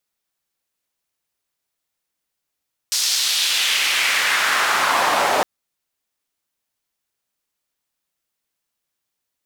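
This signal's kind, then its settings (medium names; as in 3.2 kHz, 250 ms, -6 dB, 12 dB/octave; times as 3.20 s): swept filtered noise white, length 2.51 s bandpass, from 5.4 kHz, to 690 Hz, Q 1.7, exponential, gain ramp +10 dB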